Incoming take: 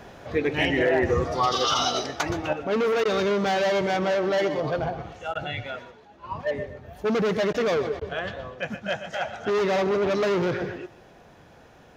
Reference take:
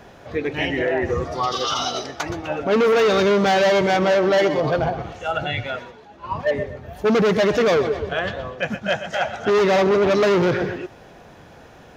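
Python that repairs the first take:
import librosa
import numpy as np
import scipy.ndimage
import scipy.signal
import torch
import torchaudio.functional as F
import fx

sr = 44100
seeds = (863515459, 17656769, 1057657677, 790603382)

y = fx.fix_declip(x, sr, threshold_db=-13.5)
y = fx.fix_interpolate(y, sr, at_s=(3.04, 5.34, 7.53, 8.0), length_ms=11.0)
y = fx.fix_echo_inverse(y, sr, delay_ms=148, level_db=-20.0)
y = fx.gain(y, sr, db=fx.steps((0.0, 0.0), (2.53, 6.5)))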